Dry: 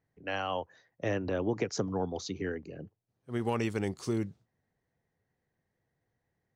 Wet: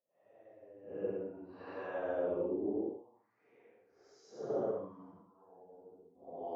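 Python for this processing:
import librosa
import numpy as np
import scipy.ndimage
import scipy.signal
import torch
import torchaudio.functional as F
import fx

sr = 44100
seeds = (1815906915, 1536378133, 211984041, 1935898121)

y = fx.step_gate(x, sr, bpm=142, pattern='xx..xx..x..x', floor_db=-24.0, edge_ms=4.5)
y = fx.wah_lfo(y, sr, hz=3.3, low_hz=390.0, high_hz=1200.0, q=2.1)
y = fx.paulstretch(y, sr, seeds[0], factor=5.6, window_s=0.1, from_s=0.98)
y = F.gain(torch.from_numpy(y), 1.0).numpy()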